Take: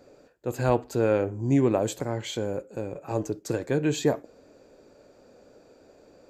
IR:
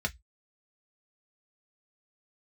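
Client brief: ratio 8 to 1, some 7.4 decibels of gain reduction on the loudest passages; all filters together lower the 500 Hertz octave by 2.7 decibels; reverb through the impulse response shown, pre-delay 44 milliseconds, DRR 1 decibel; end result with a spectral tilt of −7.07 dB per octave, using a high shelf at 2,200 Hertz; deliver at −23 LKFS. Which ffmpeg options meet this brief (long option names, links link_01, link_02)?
-filter_complex "[0:a]equalizer=frequency=500:width_type=o:gain=-3,highshelf=frequency=2200:gain=-4.5,acompressor=threshold=-25dB:ratio=8,asplit=2[link_01][link_02];[1:a]atrim=start_sample=2205,adelay=44[link_03];[link_02][link_03]afir=irnorm=-1:irlink=0,volume=-6.5dB[link_04];[link_01][link_04]amix=inputs=2:normalize=0,volume=7dB"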